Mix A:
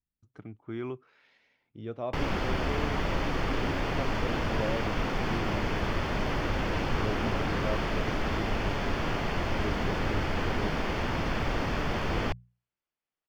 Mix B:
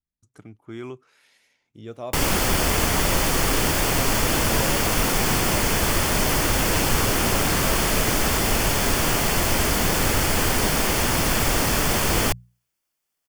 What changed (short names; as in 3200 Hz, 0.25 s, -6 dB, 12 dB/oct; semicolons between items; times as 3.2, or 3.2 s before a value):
background +6.5 dB; master: remove air absorption 260 m